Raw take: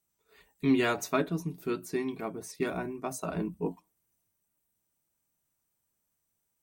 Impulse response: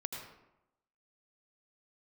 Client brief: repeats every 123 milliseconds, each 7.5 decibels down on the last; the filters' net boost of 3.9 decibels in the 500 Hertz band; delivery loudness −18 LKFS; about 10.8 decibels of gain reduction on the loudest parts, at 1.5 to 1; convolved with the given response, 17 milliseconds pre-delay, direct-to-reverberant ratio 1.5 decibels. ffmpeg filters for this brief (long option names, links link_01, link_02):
-filter_complex "[0:a]equalizer=frequency=500:width_type=o:gain=5.5,acompressor=threshold=-50dB:ratio=1.5,aecho=1:1:123|246|369|492|615:0.422|0.177|0.0744|0.0312|0.0131,asplit=2[link_01][link_02];[1:a]atrim=start_sample=2205,adelay=17[link_03];[link_02][link_03]afir=irnorm=-1:irlink=0,volume=-2dB[link_04];[link_01][link_04]amix=inputs=2:normalize=0,volume=19dB"